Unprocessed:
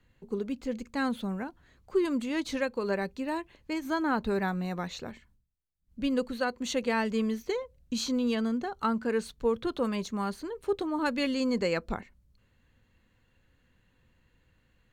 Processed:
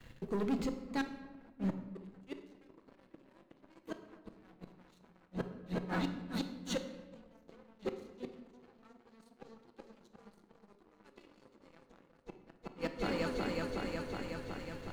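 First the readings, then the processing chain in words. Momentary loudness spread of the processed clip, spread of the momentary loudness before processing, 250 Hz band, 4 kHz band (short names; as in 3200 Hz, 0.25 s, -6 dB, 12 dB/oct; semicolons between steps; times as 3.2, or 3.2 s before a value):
21 LU, 8 LU, -10.0 dB, -9.5 dB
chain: reverse; compressor 5:1, threshold -39 dBFS, peak gain reduction 16 dB; reverse; repeats that get brighter 0.368 s, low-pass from 750 Hz, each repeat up 1 oct, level 0 dB; flipped gate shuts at -31 dBFS, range -33 dB; sample leveller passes 3; shoebox room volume 810 m³, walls mixed, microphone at 0.7 m; gain +1.5 dB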